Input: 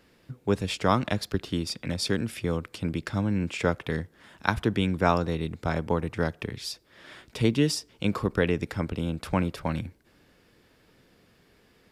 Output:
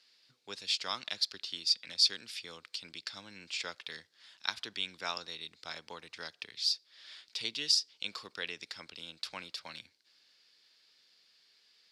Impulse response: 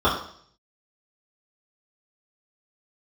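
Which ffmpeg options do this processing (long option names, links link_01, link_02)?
-af "bandpass=frequency=4500:width_type=q:width=3.1:csg=0,volume=7.5dB"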